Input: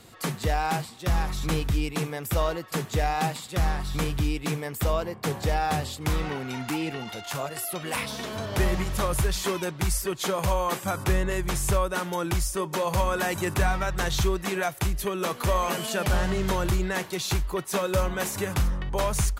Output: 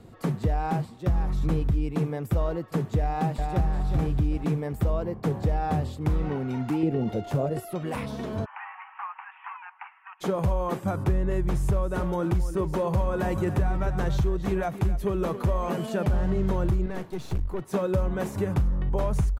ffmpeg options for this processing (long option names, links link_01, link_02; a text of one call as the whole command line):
ffmpeg -i in.wav -filter_complex "[0:a]asplit=2[link_01][link_02];[link_02]afade=type=in:start_time=3:duration=0.01,afade=type=out:start_time=3.68:duration=0.01,aecho=0:1:380|760|1140|1520:0.530884|0.18581|0.0650333|0.0227617[link_03];[link_01][link_03]amix=inputs=2:normalize=0,asettb=1/sr,asplit=3[link_04][link_05][link_06];[link_04]atrim=end=6.834[link_07];[link_05]atrim=start=6.83:end=7.6,asetpts=PTS-STARTPTS,afade=type=in:duration=0.004:curve=qsin,afade=type=out:start_time=0.766:duration=0.004:curve=qsin,lowshelf=frequency=720:width_type=q:width=1.5:gain=7[link_08];[link_06]atrim=start=7.596[link_09];[link_07][link_08]acrossfade=duration=0.004:curve1=hsin:curve2=qsin[link_10];[link_10][link_09]acrossfade=duration=0.004:curve1=qsin:curve2=hsin,asplit=3[link_11][link_12][link_13];[link_11]afade=type=out:start_time=8.44:duration=0.02[link_14];[link_12]asuperpass=centerf=1500:order=20:qfactor=0.74,afade=type=in:start_time=8.44:duration=0.02,afade=type=out:start_time=10.2:duration=0.02[link_15];[link_13]afade=type=in:start_time=10.2:duration=0.02[link_16];[link_14][link_15][link_16]amix=inputs=3:normalize=0,asplit=3[link_17][link_18][link_19];[link_17]afade=type=out:start_time=11.7:duration=0.02[link_20];[link_18]aecho=1:1:274:0.251,afade=type=in:start_time=11.7:duration=0.02,afade=type=out:start_time=15.41:duration=0.02[link_21];[link_19]afade=type=in:start_time=15.41:duration=0.02[link_22];[link_20][link_21][link_22]amix=inputs=3:normalize=0,asettb=1/sr,asplit=3[link_23][link_24][link_25];[link_23]atrim=end=16.864[link_26];[link_24]atrim=start=16.86:end=17.62,asetpts=PTS-STARTPTS,afade=type=in:duration=0.004:curve=qsin,afade=type=out:start_time=0.756:duration=0.004:curve=qsin,aeval=exprs='(tanh(25.1*val(0)+0.75)-tanh(0.75))/25.1':channel_layout=same[link_27];[link_25]atrim=start=17.616[link_28];[link_26][link_27]acrossfade=duration=0.004:curve1=hsin:curve2=qsin[link_29];[link_29][link_28]acrossfade=duration=0.004:curve1=qsin:curve2=hsin,tiltshelf=frequency=750:gain=6,acompressor=threshold=-20dB:ratio=6,highshelf=frequency=2300:gain=-9" out.wav